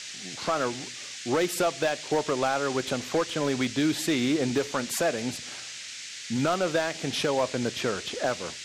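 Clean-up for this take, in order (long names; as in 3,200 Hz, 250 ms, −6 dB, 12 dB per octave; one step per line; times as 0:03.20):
clipped peaks rebuilt −18 dBFS
noise reduction from a noise print 30 dB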